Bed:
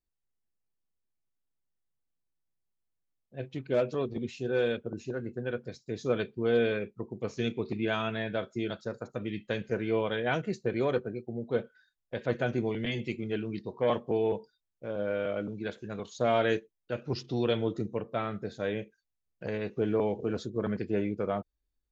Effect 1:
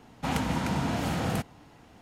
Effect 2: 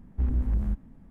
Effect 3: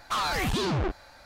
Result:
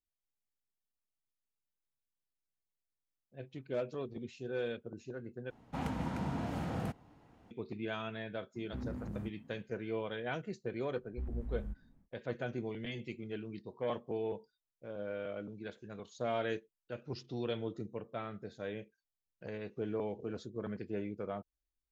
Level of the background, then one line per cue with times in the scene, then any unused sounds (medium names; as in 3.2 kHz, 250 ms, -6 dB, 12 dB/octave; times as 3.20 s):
bed -9 dB
5.50 s: replace with 1 -7.5 dB + treble shelf 2.1 kHz -10.5 dB
8.54 s: add 2 -5 dB, fades 0.02 s + high-pass 99 Hz 24 dB/octave
10.99 s: add 2 -14 dB, fades 0.10 s
not used: 3